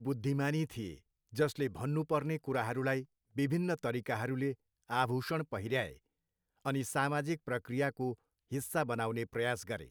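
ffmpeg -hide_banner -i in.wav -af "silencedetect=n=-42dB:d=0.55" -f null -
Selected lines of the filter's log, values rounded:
silence_start: 5.91
silence_end: 6.65 | silence_duration: 0.74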